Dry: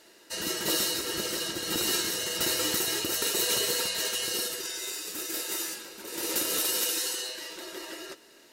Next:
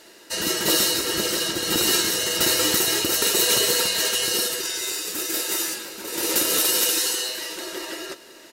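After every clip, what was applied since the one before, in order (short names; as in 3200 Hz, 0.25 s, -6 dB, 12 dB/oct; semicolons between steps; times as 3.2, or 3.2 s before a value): echo 0.528 s -18 dB; gain +7.5 dB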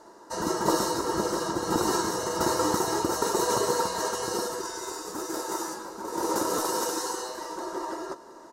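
EQ curve 610 Hz 0 dB, 990 Hz +10 dB, 2600 Hz -23 dB, 6100 Hz -8 dB, 14000 Hz -19 dB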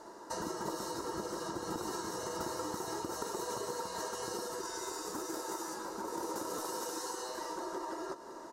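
compressor 5:1, threshold -37 dBFS, peak gain reduction 16 dB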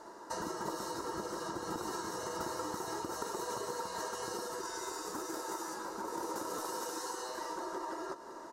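bell 1400 Hz +3 dB 1.8 oct; gain -1.5 dB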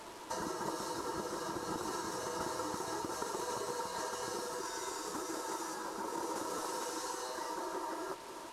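delta modulation 64 kbps, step -44.5 dBFS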